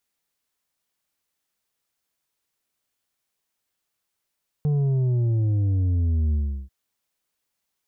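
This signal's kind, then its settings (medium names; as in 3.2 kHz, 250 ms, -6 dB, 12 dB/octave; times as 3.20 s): sub drop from 150 Hz, over 2.04 s, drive 6 dB, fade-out 0.36 s, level -19.5 dB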